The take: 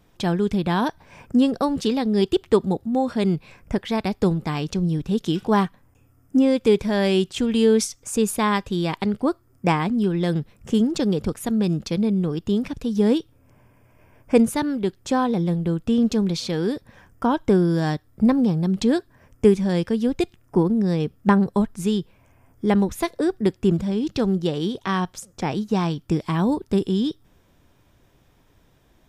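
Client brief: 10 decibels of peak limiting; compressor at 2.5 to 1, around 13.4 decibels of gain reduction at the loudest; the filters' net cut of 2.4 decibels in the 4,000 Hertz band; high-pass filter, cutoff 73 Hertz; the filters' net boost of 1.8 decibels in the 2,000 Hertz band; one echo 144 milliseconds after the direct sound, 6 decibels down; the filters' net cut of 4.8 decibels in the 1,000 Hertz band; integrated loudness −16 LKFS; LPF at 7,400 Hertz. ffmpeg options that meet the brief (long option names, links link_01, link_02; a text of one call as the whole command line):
ffmpeg -i in.wav -af "highpass=73,lowpass=7400,equalizer=frequency=1000:width_type=o:gain=-7,equalizer=frequency=2000:width_type=o:gain=5.5,equalizer=frequency=4000:width_type=o:gain=-4.5,acompressor=threshold=-33dB:ratio=2.5,alimiter=level_in=2dB:limit=-24dB:level=0:latency=1,volume=-2dB,aecho=1:1:144:0.501,volume=18.5dB" out.wav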